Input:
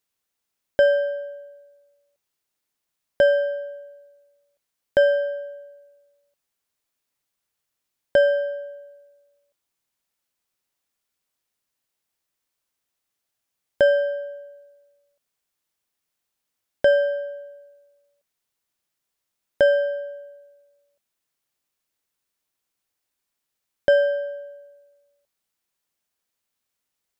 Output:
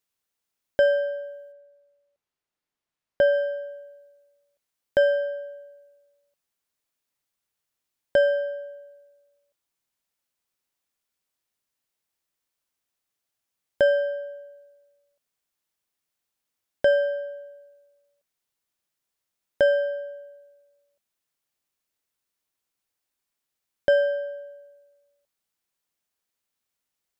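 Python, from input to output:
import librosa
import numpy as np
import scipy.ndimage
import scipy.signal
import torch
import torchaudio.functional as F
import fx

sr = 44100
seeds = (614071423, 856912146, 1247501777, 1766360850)

y = fx.lowpass(x, sr, hz=fx.line((1.51, 2000.0), (3.33, 3300.0)), slope=6, at=(1.51, 3.33), fade=0.02)
y = F.gain(torch.from_numpy(y), -2.5).numpy()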